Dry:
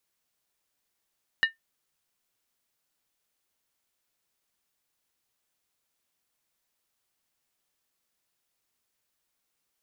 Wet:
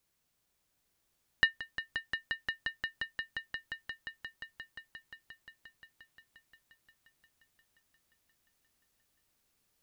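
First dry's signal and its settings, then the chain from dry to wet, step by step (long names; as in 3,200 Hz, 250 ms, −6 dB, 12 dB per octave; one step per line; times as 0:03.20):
struck skin, lowest mode 1,810 Hz, decay 0.14 s, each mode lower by 7.5 dB, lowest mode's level −15 dB
low-shelf EQ 230 Hz +11 dB
echo that builds up and dies away 176 ms, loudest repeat 5, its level −10 dB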